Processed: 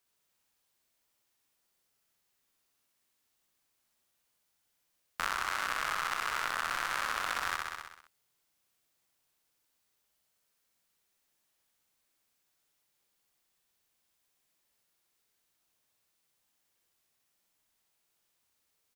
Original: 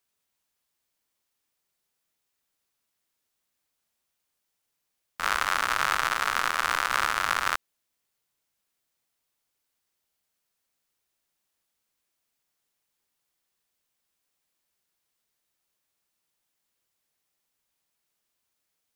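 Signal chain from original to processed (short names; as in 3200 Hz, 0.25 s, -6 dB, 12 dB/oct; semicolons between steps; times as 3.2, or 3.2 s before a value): feedback echo 64 ms, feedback 57%, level -3.5 dB; compressor 6:1, threshold -29 dBFS, peak gain reduction 11 dB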